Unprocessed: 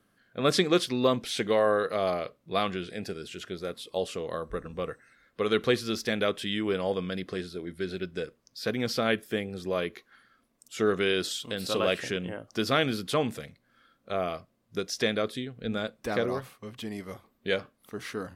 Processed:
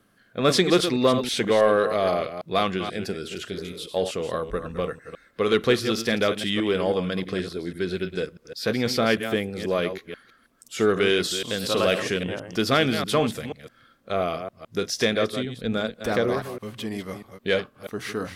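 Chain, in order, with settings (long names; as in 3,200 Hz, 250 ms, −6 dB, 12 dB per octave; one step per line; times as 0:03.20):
delay that plays each chunk backwards 161 ms, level −9.5 dB
in parallel at −5.5 dB: soft clipping −23 dBFS, distortion −11 dB
on the sum: healed spectral selection 0:03.55–0:03.83, 280–1,900 Hz both
level +2 dB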